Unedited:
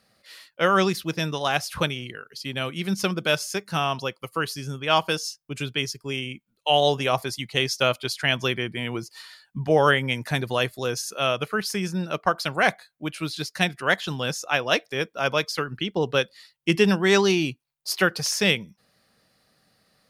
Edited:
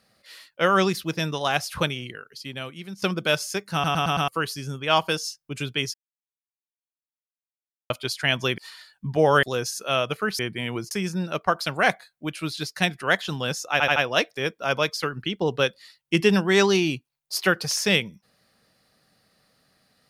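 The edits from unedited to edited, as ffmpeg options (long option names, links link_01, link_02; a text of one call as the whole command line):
ffmpeg -i in.wav -filter_complex "[0:a]asplit=16[link_01][link_02][link_03][link_04][link_05][link_06][link_07][link_08][link_09][link_10][link_11][link_12][link_13][link_14][link_15][link_16];[link_01]atrim=end=3.02,asetpts=PTS-STARTPTS,afade=type=out:start_time=2.06:duration=0.96:silence=0.16788[link_17];[link_02]atrim=start=3.02:end=3.842,asetpts=PTS-STARTPTS,afade=type=in:duration=0.004:curve=hsin:silence=0.16788[link_18];[link_03]atrim=start=3.728:end=3.842[link_19];[link_04]atrim=start=3.728:end=3.842[link_20];[link_05]atrim=start=3.728:end=3.842[link_21];[link_06]atrim=start=3.728:end=3.842[link_22];[link_07]atrim=start=4.278:end=5.94,asetpts=PTS-STARTPTS,afade=type=out:start_time=1.658:duration=0.004:curve=hsin[link_23];[link_08]atrim=start=5.94:end=7.9,asetpts=PTS-STARTPTS,volume=0[link_24];[link_09]atrim=start=7.9:end=8.582,asetpts=PTS-STARTPTS,afade=type=in:duration=0.004:curve=hsin[link_25];[link_10]atrim=start=9.098:end=9.952[link_26];[link_11]atrim=start=10.738:end=11.702[link_27];[link_12]atrim=start=8.578:end=9.102[link_28];[link_13]atrim=start=11.698:end=14.592[link_29];[link_14]atrim=start=14.508:end=14.592[link_30];[link_15]atrim=start=14.508:end=14.592[link_31];[link_16]atrim=start=14.508[link_32];[link_17][link_18]concat=n=2:v=0:a=1[link_33];[link_33][link_19]acrossfade=duration=0.004:curve1=hsin:curve2=hsin[link_34];[link_34][link_20]acrossfade=duration=0.004:curve1=hsin:curve2=hsin[link_35];[link_35][link_21]acrossfade=duration=0.004:curve1=hsin:curve2=hsin[link_36];[link_36][link_22]acrossfade=duration=0.004:curve1=hsin:curve2=hsin[link_37];[link_23][link_24][link_25]concat=n=3:v=0:a=1[link_38];[link_37][link_38]acrossfade=duration=0.004:curve1=hsin:curve2=hsin[link_39];[link_39][link_26]acrossfade=duration=0.004:curve1=hsin:curve2=hsin[link_40];[link_40][link_27]acrossfade=duration=0.004:curve1=hsin:curve2=hsin[link_41];[link_41][link_28]acrossfade=duration=0.004:curve1=hsin:curve2=hsin[link_42];[link_42][link_29]acrossfade=duration=0.004:curve1=hsin:curve2=hsin[link_43];[link_43][link_30]acrossfade=duration=0.004:curve1=hsin:curve2=hsin[link_44];[link_44][link_31]acrossfade=duration=0.004:curve1=hsin:curve2=hsin[link_45];[link_45][link_32]acrossfade=duration=0.004:curve1=hsin:curve2=hsin" out.wav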